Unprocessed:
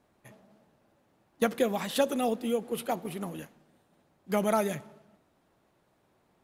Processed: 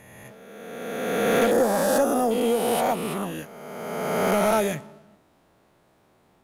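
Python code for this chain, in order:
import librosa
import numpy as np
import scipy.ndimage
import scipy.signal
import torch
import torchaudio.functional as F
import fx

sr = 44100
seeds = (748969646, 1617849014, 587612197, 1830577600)

y = fx.spec_swells(x, sr, rise_s=1.96)
y = 10.0 ** (-17.5 / 20.0) * np.tanh(y / 10.0 ** (-17.5 / 20.0))
y = fx.band_shelf(y, sr, hz=3000.0, db=-12.5, octaves=1.2, at=(1.51, 2.31))
y = y * librosa.db_to_amplitude(4.5)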